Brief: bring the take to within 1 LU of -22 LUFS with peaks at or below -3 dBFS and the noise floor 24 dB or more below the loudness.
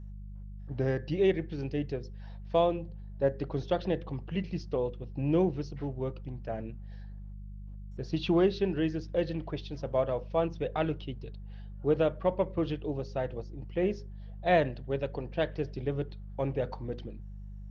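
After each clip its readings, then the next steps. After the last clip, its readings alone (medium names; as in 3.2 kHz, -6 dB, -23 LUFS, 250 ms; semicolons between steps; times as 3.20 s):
hum 50 Hz; highest harmonic 200 Hz; hum level -41 dBFS; loudness -32.0 LUFS; peak level -13.5 dBFS; loudness target -22.0 LUFS
-> de-hum 50 Hz, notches 4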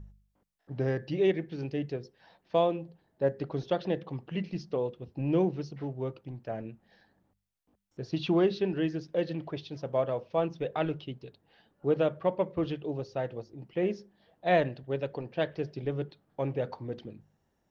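hum not found; loudness -32.0 LUFS; peak level -13.5 dBFS; loudness target -22.0 LUFS
-> trim +10 dB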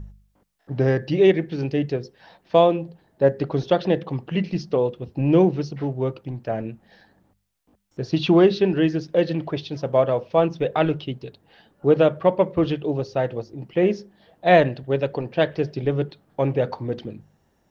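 loudness -22.0 LUFS; peak level -3.5 dBFS; noise floor -66 dBFS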